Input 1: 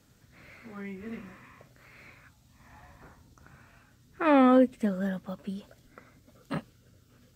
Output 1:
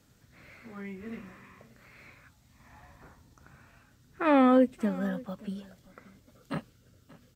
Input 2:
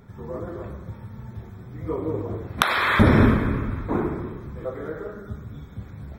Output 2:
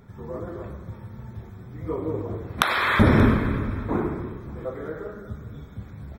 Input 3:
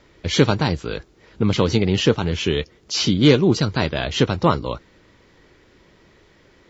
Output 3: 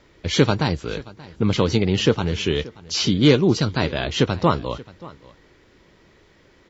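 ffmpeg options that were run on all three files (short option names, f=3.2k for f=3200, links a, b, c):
-af "aecho=1:1:580:0.0944,volume=-1dB"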